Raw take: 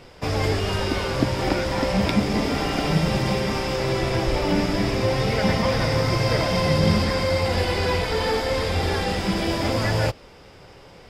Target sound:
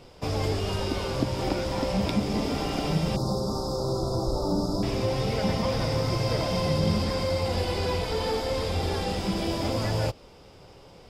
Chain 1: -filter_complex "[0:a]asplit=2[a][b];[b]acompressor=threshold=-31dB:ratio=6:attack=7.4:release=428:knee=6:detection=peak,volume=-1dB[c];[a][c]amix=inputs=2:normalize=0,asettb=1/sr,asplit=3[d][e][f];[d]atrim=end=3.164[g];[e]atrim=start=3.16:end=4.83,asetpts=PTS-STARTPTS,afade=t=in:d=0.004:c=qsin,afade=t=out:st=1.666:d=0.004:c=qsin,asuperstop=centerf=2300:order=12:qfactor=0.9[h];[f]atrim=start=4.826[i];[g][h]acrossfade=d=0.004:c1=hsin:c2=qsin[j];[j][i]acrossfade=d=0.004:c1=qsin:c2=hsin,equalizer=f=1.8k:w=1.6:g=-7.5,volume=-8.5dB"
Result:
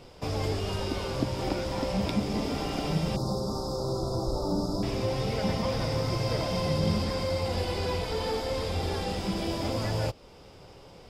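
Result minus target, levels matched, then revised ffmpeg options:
compressor: peak gain reduction +10 dB
-filter_complex "[0:a]asplit=2[a][b];[b]acompressor=threshold=-19dB:ratio=6:attack=7.4:release=428:knee=6:detection=peak,volume=-1dB[c];[a][c]amix=inputs=2:normalize=0,asettb=1/sr,asplit=3[d][e][f];[d]atrim=end=3.164[g];[e]atrim=start=3.16:end=4.83,asetpts=PTS-STARTPTS,afade=t=in:d=0.004:c=qsin,afade=t=out:st=1.666:d=0.004:c=qsin,asuperstop=centerf=2300:order=12:qfactor=0.9[h];[f]atrim=start=4.826[i];[g][h]acrossfade=d=0.004:c1=hsin:c2=qsin[j];[j][i]acrossfade=d=0.004:c1=qsin:c2=hsin,equalizer=f=1.8k:w=1.6:g=-7.5,volume=-8.5dB"

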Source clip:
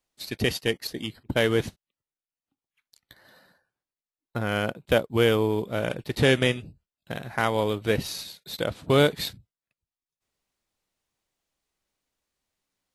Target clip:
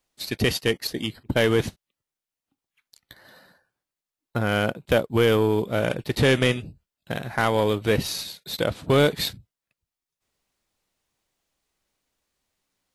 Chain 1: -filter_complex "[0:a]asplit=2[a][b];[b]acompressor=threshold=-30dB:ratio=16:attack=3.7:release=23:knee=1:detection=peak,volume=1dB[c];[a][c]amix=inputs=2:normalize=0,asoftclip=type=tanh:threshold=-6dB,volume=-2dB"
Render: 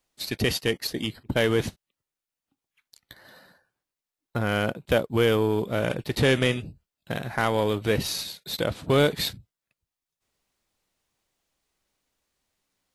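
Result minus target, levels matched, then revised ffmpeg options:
compressor: peak gain reduction +8 dB
-filter_complex "[0:a]asplit=2[a][b];[b]acompressor=threshold=-21.5dB:ratio=16:attack=3.7:release=23:knee=1:detection=peak,volume=1dB[c];[a][c]amix=inputs=2:normalize=0,asoftclip=type=tanh:threshold=-6dB,volume=-2dB"

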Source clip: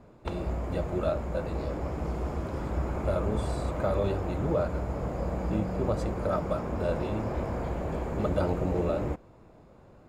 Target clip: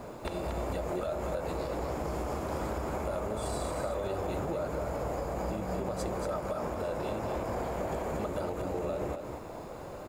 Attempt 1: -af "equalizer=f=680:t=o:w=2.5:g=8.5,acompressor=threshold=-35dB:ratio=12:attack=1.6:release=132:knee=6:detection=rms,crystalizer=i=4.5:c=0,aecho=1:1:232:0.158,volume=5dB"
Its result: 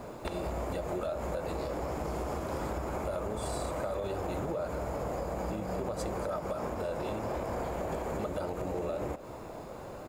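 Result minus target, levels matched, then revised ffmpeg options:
echo-to-direct -10 dB
-af "equalizer=f=680:t=o:w=2.5:g=8.5,acompressor=threshold=-35dB:ratio=12:attack=1.6:release=132:knee=6:detection=rms,crystalizer=i=4.5:c=0,aecho=1:1:232:0.501,volume=5dB"

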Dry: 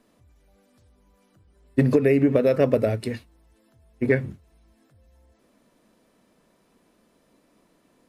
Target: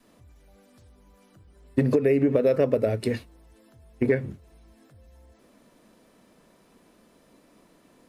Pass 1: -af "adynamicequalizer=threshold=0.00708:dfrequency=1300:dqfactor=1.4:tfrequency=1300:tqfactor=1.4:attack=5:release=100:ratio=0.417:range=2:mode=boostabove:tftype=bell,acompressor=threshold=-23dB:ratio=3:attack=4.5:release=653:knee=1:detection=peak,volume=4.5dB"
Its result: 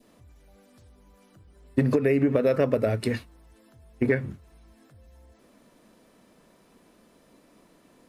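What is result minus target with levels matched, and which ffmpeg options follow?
1000 Hz band +3.0 dB
-af "adynamicequalizer=threshold=0.00708:dfrequency=460:dqfactor=1.4:tfrequency=460:tqfactor=1.4:attack=5:release=100:ratio=0.417:range=2:mode=boostabove:tftype=bell,acompressor=threshold=-23dB:ratio=3:attack=4.5:release=653:knee=1:detection=peak,volume=4.5dB"

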